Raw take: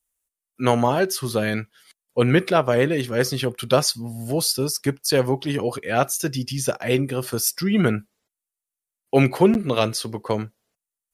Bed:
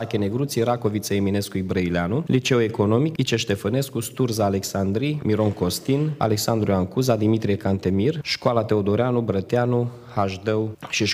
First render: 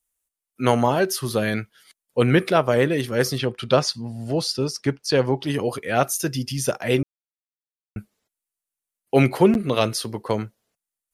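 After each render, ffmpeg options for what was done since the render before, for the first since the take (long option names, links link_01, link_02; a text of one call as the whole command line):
ffmpeg -i in.wav -filter_complex "[0:a]asettb=1/sr,asplit=3[link_01][link_02][link_03];[link_01]atrim=end=3.384[link_04];[link_02]atrim=start=3.38:end=5.43,asetpts=PTS-STARTPTS,afade=type=in:duration=0.004:curve=qsin,afade=type=out:start_time=2.046:duration=0.004:curve=qsin,lowpass=5300[link_05];[link_03]atrim=start=5.426[link_06];[link_04][link_05]acrossfade=duration=0.004:curve1=hsin:curve2=qsin[link_07];[link_07][link_06]acrossfade=duration=0.004:curve1=qsin:curve2=hsin,asplit=3[link_08][link_09][link_10];[link_08]atrim=end=7.03,asetpts=PTS-STARTPTS,afade=type=out:start_time=7.026:duration=0.004:curve=hsin[link_11];[link_09]atrim=start=7.03:end=7.96,asetpts=PTS-STARTPTS,volume=0[link_12];[link_10]atrim=start=7.96,asetpts=PTS-STARTPTS,afade=type=in:duration=0.004:curve=hsin[link_13];[link_11][link_12][link_13]concat=n=3:v=0:a=1" out.wav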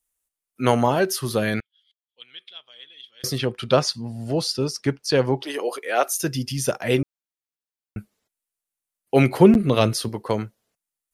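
ffmpeg -i in.wav -filter_complex "[0:a]asettb=1/sr,asplit=3[link_01][link_02][link_03];[link_01]atrim=end=1.604[link_04];[link_02]atrim=start=1.6:end=3.24,asetpts=PTS-STARTPTS,afade=type=in:duration=0.004:curve=qsin,afade=type=out:start_time=1.636:duration=0.004:curve=qsin,bandpass=frequency=3300:width_type=q:width=17[link_05];[link_03]atrim=start=3.236[link_06];[link_04][link_05]acrossfade=duration=0.004:curve1=hsin:curve2=qsin[link_07];[link_07][link_06]acrossfade=duration=0.004:curve1=qsin:curve2=hsin,asettb=1/sr,asplit=3[link_08][link_09][link_10];[link_08]atrim=end=5.424[link_11];[link_09]atrim=start=5.42:end=6.19,asetpts=PTS-STARTPTS,afade=type=in:duration=0.004:curve=qsin,afade=type=out:start_time=0.766:duration=0.004:curve=qsin,highpass=frequency=360:width=0.5412,highpass=frequency=360:width=1.3066[link_12];[link_10]atrim=start=6.186[link_13];[link_11][link_12]acrossfade=duration=0.004:curve1=hsin:curve2=qsin[link_14];[link_14][link_13]acrossfade=duration=0.004:curve1=qsin:curve2=hsin,asettb=1/sr,asplit=3[link_15][link_16][link_17];[link_15]atrim=end=9.354[link_18];[link_16]atrim=start=9.35:end=10.09,asetpts=PTS-STARTPTS,afade=type=in:duration=0.004:curve=qsin,afade=type=out:start_time=0.736:duration=0.004:curve=qsin,lowshelf=frequency=280:gain=7[link_19];[link_17]atrim=start=10.086[link_20];[link_18][link_19]acrossfade=duration=0.004:curve1=hsin:curve2=qsin[link_21];[link_21][link_20]acrossfade=duration=0.004:curve1=qsin:curve2=hsin" out.wav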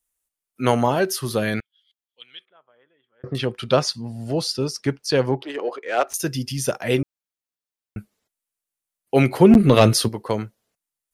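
ffmpeg -i in.wav -filter_complex "[0:a]asettb=1/sr,asplit=3[link_01][link_02][link_03];[link_01]atrim=end=2.454[link_04];[link_02]atrim=start=2.45:end=3.35,asetpts=PTS-STARTPTS,afade=type=in:duration=0.004:curve=qsin,afade=type=out:start_time=0.896:duration=0.004:curve=qsin,lowpass=frequency=1400:width=0.5412,lowpass=frequency=1400:width=1.3066[link_05];[link_03]atrim=start=3.346[link_06];[link_04][link_05]acrossfade=duration=0.004:curve1=hsin:curve2=qsin[link_07];[link_07][link_06]acrossfade=duration=0.004:curve1=qsin:curve2=hsin,asettb=1/sr,asplit=3[link_08][link_09][link_10];[link_08]atrim=end=5.314[link_11];[link_09]atrim=start=5.31:end=6.14,asetpts=PTS-STARTPTS,afade=type=in:duration=0.004:curve=qsin,afade=type=out:start_time=0.826:duration=0.004:curve=qsin,adynamicsmooth=sensitivity=1.5:basefreq=2200[link_12];[link_10]atrim=start=6.136[link_13];[link_11][link_12]acrossfade=duration=0.004:curve1=hsin:curve2=qsin[link_14];[link_14][link_13]acrossfade=duration=0.004:curve1=qsin:curve2=hsin,asplit=3[link_15][link_16][link_17];[link_15]afade=type=out:start_time=9.5:duration=0.02[link_18];[link_16]acontrast=71,afade=type=in:start_time=9.5:duration=0.02,afade=type=out:start_time=10.07:duration=0.02[link_19];[link_17]afade=type=in:start_time=10.07:duration=0.02[link_20];[link_18][link_19][link_20]amix=inputs=3:normalize=0" out.wav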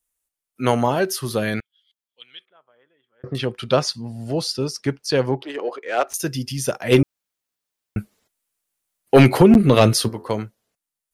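ffmpeg -i in.wav -filter_complex "[0:a]asplit=3[link_01][link_02][link_03];[link_01]afade=type=out:start_time=6.91:duration=0.02[link_04];[link_02]aeval=exprs='0.668*sin(PI/2*1.58*val(0)/0.668)':channel_layout=same,afade=type=in:start_time=6.91:duration=0.02,afade=type=out:start_time=9.41:duration=0.02[link_05];[link_03]afade=type=in:start_time=9.41:duration=0.02[link_06];[link_04][link_05][link_06]amix=inputs=3:normalize=0,asettb=1/sr,asplit=3[link_07][link_08][link_09];[link_07]atrim=end=9.954[link_10];[link_08]atrim=start=9.95:end=10.4,asetpts=PTS-STARTPTS,afade=type=in:duration=0.004:curve=qsin,afade=type=out:start_time=0.446:duration=0.004:curve=qsin,bandreject=frequency=85.81:width_type=h:width=4,bandreject=frequency=171.62:width_type=h:width=4,bandreject=frequency=257.43:width_type=h:width=4,bandreject=frequency=343.24:width_type=h:width=4,bandreject=frequency=429.05:width_type=h:width=4,bandreject=frequency=514.86:width_type=h:width=4,bandreject=frequency=600.67:width_type=h:width=4,bandreject=frequency=686.48:width_type=h:width=4,bandreject=frequency=772.29:width_type=h:width=4,bandreject=frequency=858.1:width_type=h:width=4,bandreject=frequency=943.91:width_type=h:width=4,bandreject=frequency=1029.72:width_type=h:width=4,bandreject=frequency=1115.53:width_type=h:width=4,bandreject=frequency=1201.34:width_type=h:width=4,bandreject=frequency=1287.15:width_type=h:width=4,bandreject=frequency=1372.96:width_type=h:width=4,bandreject=frequency=1458.77:width_type=h:width=4,bandreject=frequency=1544.58:width_type=h:width=4,bandreject=frequency=1630.39:width_type=h:width=4,bandreject=frequency=1716.2:width_type=h:width=4,bandreject=frequency=1802.01:width_type=h:width=4[link_11];[link_09]atrim=start=10.396[link_12];[link_10][link_11]acrossfade=duration=0.004:curve1=hsin:curve2=qsin[link_13];[link_13][link_12]acrossfade=duration=0.004:curve1=qsin:curve2=hsin" out.wav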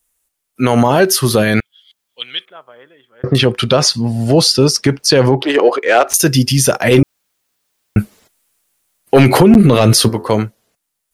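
ffmpeg -i in.wav -af "dynaudnorm=framelen=160:gausssize=13:maxgain=11.5dB,alimiter=level_in=11.5dB:limit=-1dB:release=50:level=0:latency=1" out.wav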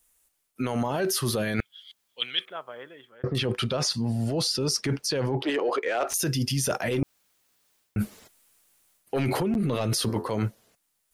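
ffmpeg -i in.wav -af "alimiter=limit=-9dB:level=0:latency=1:release=26,areverse,acompressor=threshold=-24dB:ratio=6,areverse" out.wav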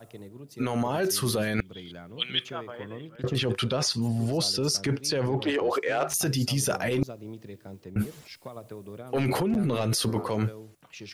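ffmpeg -i in.wav -i bed.wav -filter_complex "[1:a]volume=-21.5dB[link_01];[0:a][link_01]amix=inputs=2:normalize=0" out.wav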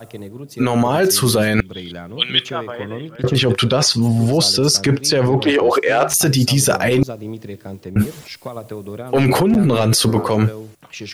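ffmpeg -i in.wav -af "volume=11.5dB,alimiter=limit=-2dB:level=0:latency=1" out.wav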